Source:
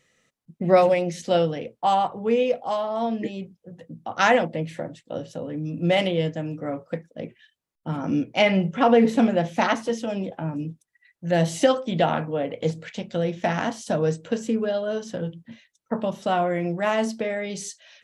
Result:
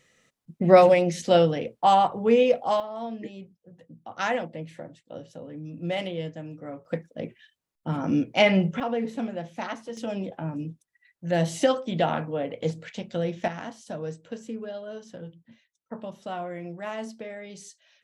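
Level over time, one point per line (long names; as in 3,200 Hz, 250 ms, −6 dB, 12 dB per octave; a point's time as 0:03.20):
+2 dB
from 0:02.80 −8.5 dB
from 0:06.85 0 dB
from 0:08.80 −11.5 dB
from 0:09.97 −3 dB
from 0:13.48 −11 dB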